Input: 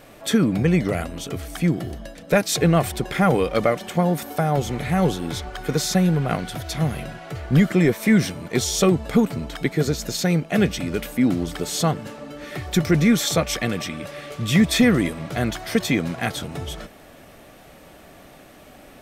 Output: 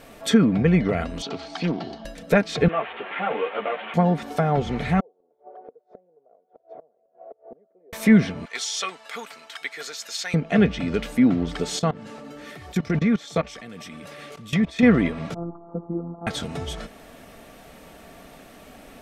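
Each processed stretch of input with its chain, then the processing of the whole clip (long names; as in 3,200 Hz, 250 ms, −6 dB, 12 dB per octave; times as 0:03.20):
0:01.22–0:02.05: loudspeaker in its box 220–5,500 Hz, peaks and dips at 500 Hz −6 dB, 840 Hz +10 dB, 1,900 Hz −4 dB, 4,300 Hz +9 dB + highs frequency-modulated by the lows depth 0.33 ms
0:02.68–0:03.94: linear delta modulator 16 kbit/s, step −24 dBFS + high-pass filter 490 Hz + string-ensemble chorus
0:05.00–0:07.93: flat-topped band-pass 540 Hz, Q 2 + gate with flip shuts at −31 dBFS, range −28 dB
0:08.45–0:10.34: high-pass filter 1,300 Hz + high-shelf EQ 7,700 Hz −8.5 dB
0:11.79–0:14.83: high-pass filter 80 Hz + output level in coarse steps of 20 dB
0:15.34–0:16.27: phases set to zero 170 Hz + Chebyshev low-pass with heavy ripple 1,300 Hz, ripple 9 dB + one half of a high-frequency compander decoder only
whole clip: treble cut that deepens with the level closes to 2,900 Hz, closed at −18 dBFS; comb filter 4.4 ms, depth 31%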